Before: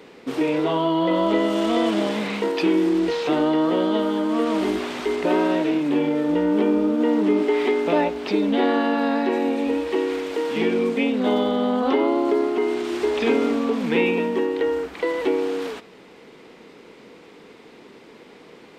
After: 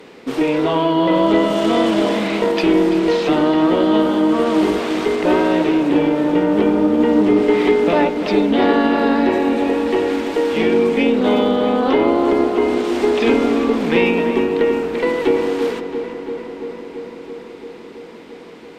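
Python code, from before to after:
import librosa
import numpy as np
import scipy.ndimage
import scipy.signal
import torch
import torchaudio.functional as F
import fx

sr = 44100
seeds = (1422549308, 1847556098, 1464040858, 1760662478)

y = fx.cheby_harmonics(x, sr, harmonics=(2, 6), levels_db=(-17, -43), full_scale_db=-7.5)
y = fx.echo_filtered(y, sr, ms=337, feedback_pct=78, hz=3500.0, wet_db=-10.0)
y = y * librosa.db_to_amplitude(4.5)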